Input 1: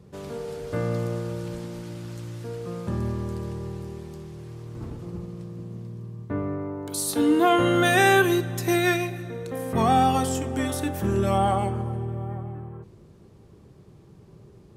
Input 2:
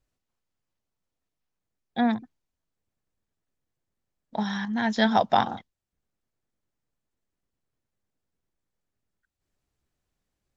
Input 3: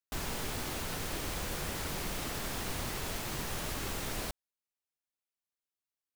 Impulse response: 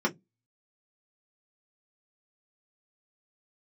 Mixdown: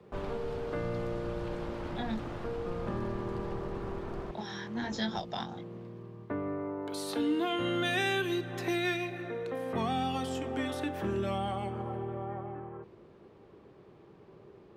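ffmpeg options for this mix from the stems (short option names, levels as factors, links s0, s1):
-filter_complex "[0:a]acrossover=split=280 3600:gain=0.178 1 0.0891[s0][s1][s2];[s0][s1][s2]amix=inputs=3:normalize=0,volume=1.26[s3];[1:a]highshelf=f=5600:g=11,flanger=delay=19:depth=4.2:speed=1.2,volume=0.473[s4];[2:a]lowpass=f=1300:w=0.5412,lowpass=f=1300:w=1.3066,aeval=exprs='sgn(val(0))*max(abs(val(0))-0.00168,0)':c=same,volume=1[s5];[s3][s4][s5]amix=inputs=3:normalize=0,acrossover=split=230|3000[s6][s7][s8];[s7]acompressor=threshold=0.0178:ratio=5[s9];[s6][s9][s8]amix=inputs=3:normalize=0"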